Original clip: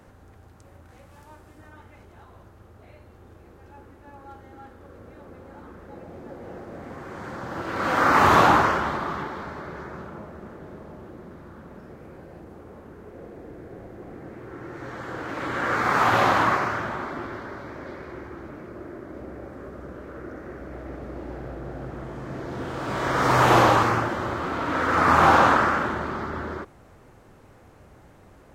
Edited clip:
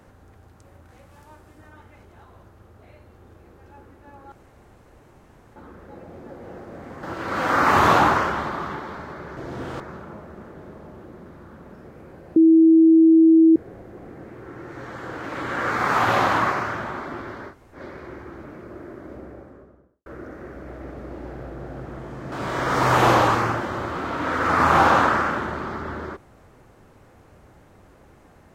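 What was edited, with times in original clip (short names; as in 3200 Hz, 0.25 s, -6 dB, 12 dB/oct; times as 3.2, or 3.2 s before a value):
4.32–5.56 room tone
7.03–7.51 cut
12.41–13.61 bleep 324 Hz -9.5 dBFS
17.56–17.81 room tone, crossfade 0.10 s
19.08–20.11 studio fade out
22.37–22.8 move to 9.85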